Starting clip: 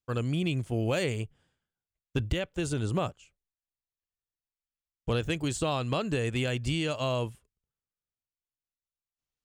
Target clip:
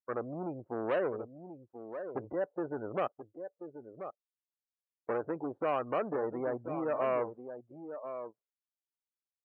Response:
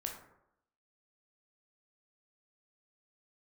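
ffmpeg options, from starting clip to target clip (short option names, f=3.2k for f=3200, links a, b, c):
-filter_complex "[0:a]lowpass=f=1.3k:w=0.5412,lowpass=f=1.3k:w=1.3066,asoftclip=type=tanh:threshold=-30dB,acontrast=52,asettb=1/sr,asplit=3[a][b][c];[a]atrim=end=0.894[d];[b]atrim=start=0.89:end=2.23,asetpts=PTS-STARTPTS,afade=t=in:d=0.004:c=qsin,afade=t=out:st=1.336:d=0.004:c=qsin,aemphasis=mode=production:type=75kf[e];[c]atrim=start=2.226[f];[d][e]acrossfade=d=0.004:c1=hsin:c2=qsin[g];[g][f]acrossfade=d=0.004:c1=qsin:c2=hsin,asettb=1/sr,asplit=3[h][i][j];[h]atrim=end=3.074[k];[i]atrim=start=3.07:end=5.09,asetpts=PTS-STARTPTS,afade=t=in:d=0.004:c=qsin,afade=t=out:st=2.016:d=0.004:c=qsin,acompressor=threshold=-58dB:ratio=10[l];[j]atrim=start=5.086[m];[k][l]acrossfade=d=0.004:c1=hsin:c2=qsin[n];[n][m]acrossfade=d=0.004:c1=qsin:c2=hsin,highpass=430,aecho=1:1:1034:0.335,afftdn=nr=27:nf=-44"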